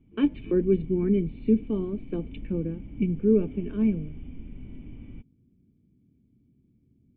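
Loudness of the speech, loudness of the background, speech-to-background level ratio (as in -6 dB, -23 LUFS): -26.5 LUFS, -44.5 LUFS, 18.0 dB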